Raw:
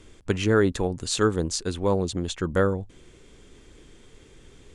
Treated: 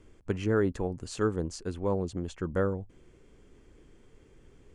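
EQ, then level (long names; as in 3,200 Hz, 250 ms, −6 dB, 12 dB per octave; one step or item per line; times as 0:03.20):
high-shelf EQ 2,100 Hz −9 dB
parametric band 3,700 Hz −8.5 dB 0.21 octaves
−5.5 dB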